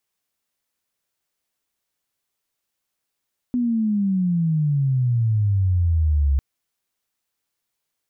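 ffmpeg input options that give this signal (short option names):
-f lavfi -i "aevalsrc='pow(10,(-18+3*t/2.85)/20)*sin(2*PI*250*2.85/log(67/250)*(exp(log(67/250)*t/2.85)-1))':d=2.85:s=44100"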